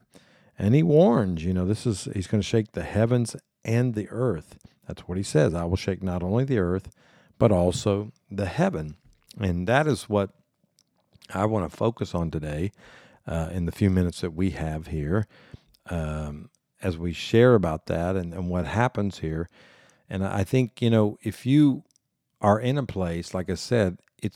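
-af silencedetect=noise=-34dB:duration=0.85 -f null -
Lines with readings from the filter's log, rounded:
silence_start: 10.26
silence_end: 11.25 | silence_duration: 0.99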